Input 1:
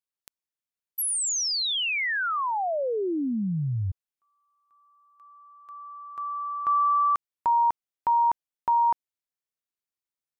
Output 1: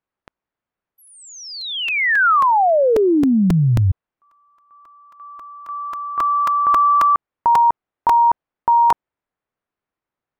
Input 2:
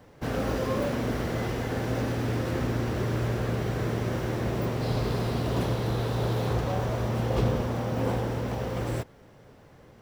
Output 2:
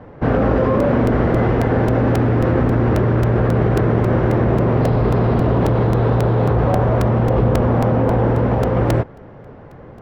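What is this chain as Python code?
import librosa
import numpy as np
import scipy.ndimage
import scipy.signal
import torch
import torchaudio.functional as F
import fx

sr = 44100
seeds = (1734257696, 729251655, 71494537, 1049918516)

p1 = scipy.signal.sosfilt(scipy.signal.butter(2, 1500.0, 'lowpass', fs=sr, output='sos'), x)
p2 = fx.over_compress(p1, sr, threshold_db=-29.0, ratio=-0.5)
p3 = p1 + (p2 * librosa.db_to_amplitude(-1.0))
p4 = fx.buffer_crackle(p3, sr, first_s=0.8, period_s=0.27, block=128, kind='repeat')
y = p4 * librosa.db_to_amplitude(8.0)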